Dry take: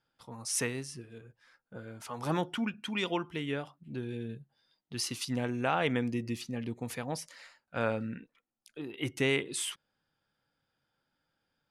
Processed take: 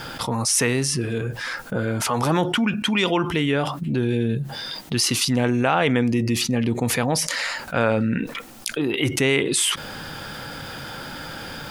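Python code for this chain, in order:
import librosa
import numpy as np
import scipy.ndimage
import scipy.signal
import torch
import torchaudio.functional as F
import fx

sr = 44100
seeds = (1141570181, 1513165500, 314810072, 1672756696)

y = fx.env_flatten(x, sr, amount_pct=70)
y = y * 10.0 ** (8.0 / 20.0)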